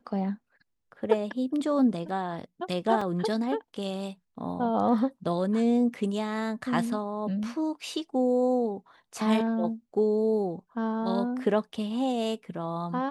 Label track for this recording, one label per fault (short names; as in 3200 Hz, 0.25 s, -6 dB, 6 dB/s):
3.010000	3.010000	gap 4 ms